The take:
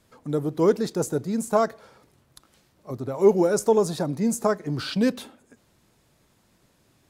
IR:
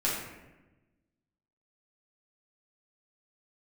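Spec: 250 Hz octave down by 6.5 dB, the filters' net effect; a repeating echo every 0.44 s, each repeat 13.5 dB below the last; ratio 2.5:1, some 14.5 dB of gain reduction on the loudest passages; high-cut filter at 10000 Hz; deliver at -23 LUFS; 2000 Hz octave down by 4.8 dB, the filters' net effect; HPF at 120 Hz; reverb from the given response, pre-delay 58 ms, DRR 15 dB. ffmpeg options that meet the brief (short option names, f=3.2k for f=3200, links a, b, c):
-filter_complex "[0:a]highpass=120,lowpass=10k,equalizer=f=250:t=o:g=-8.5,equalizer=f=2k:t=o:g=-7,acompressor=threshold=-39dB:ratio=2.5,aecho=1:1:440|880:0.211|0.0444,asplit=2[a][b];[1:a]atrim=start_sample=2205,adelay=58[c];[b][c]afir=irnorm=-1:irlink=0,volume=-24dB[d];[a][d]amix=inputs=2:normalize=0,volume=15.5dB"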